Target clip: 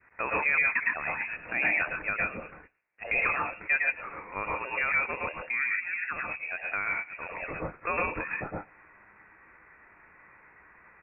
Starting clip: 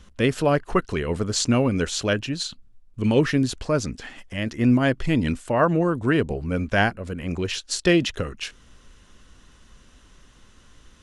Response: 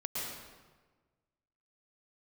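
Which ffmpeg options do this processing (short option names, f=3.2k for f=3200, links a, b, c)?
-filter_complex "[0:a]highpass=f=640:w=0.5412,highpass=f=640:w=1.3066,asplit=2[a][b];[b]adelay=113,lowpass=f=980:p=1,volume=-19dB,asplit=2[c][d];[d]adelay=113,lowpass=f=980:p=1,volume=0.39,asplit=2[e][f];[f]adelay=113,lowpass=f=980:p=1,volume=0.39[g];[a][c][e][g]amix=inputs=4:normalize=0[h];[1:a]atrim=start_sample=2205,afade=t=out:st=0.19:d=0.01,atrim=end_sample=8820[i];[h][i]afir=irnorm=-1:irlink=0,asettb=1/sr,asplit=3[j][k][l];[j]atrim=end=5.374[m];[k]atrim=start=5.37:end=7.56,asetpts=PTS-STARTPTS,afade=t=in:d=0.004:c=qsin,afade=t=out:st=2.186:d=0.004:c=qsin,acompressor=threshold=-35dB:ratio=3[n];[l]atrim=start=7.556[o];[m][n]acrossfade=d=0.004:c1=hsin:c2=qsin[p];[p][o]acrossfade=d=0.004:c1=qsin:c2=hsin,alimiter=limit=-21dB:level=0:latency=1:release=79,lowpass=f=2.6k:t=q:w=0.5098,lowpass=f=2.6k:t=q:w=0.6013,lowpass=f=2.6k:t=q:w=0.9,lowpass=f=2.6k:t=q:w=2.563,afreqshift=-3000,adynamicequalizer=threshold=0.00447:dfrequency=860:dqfactor=0.7:tfrequency=860:tqfactor=0.7:attack=5:release=100:ratio=0.375:range=3:mode=cutabove:tftype=bell,volume=6dB"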